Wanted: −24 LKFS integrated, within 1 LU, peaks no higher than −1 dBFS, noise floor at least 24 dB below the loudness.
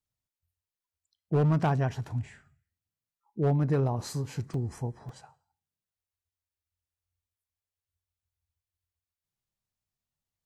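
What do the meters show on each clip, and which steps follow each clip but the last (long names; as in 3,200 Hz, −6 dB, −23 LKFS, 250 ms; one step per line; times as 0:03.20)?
share of clipped samples 0.7%; peaks flattened at −20.0 dBFS; number of dropouts 2; longest dropout 2.8 ms; integrated loudness −29.5 LKFS; sample peak −20.0 dBFS; target loudness −24.0 LKFS
→ clipped peaks rebuilt −20 dBFS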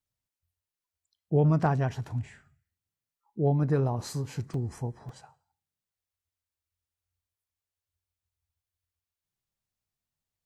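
share of clipped samples 0.0%; number of dropouts 2; longest dropout 2.8 ms
→ repair the gap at 0:04.54/0:05.09, 2.8 ms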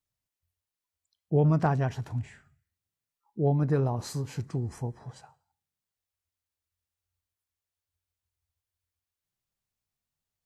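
number of dropouts 0; integrated loudness −28.5 LKFS; sample peak −12.5 dBFS; target loudness −24.0 LKFS
→ level +4.5 dB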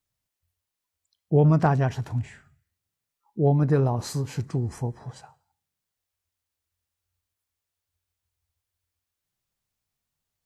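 integrated loudness −24.0 LKFS; sample peak −8.0 dBFS; background noise floor −85 dBFS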